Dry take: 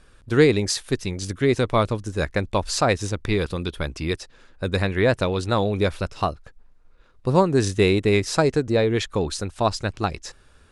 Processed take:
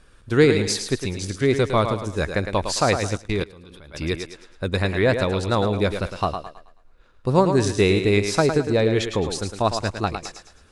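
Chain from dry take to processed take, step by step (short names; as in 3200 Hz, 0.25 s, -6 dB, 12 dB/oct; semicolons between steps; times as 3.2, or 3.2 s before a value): thinning echo 0.108 s, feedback 37%, high-pass 190 Hz, level -7 dB; 3.17–3.94 level quantiser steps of 22 dB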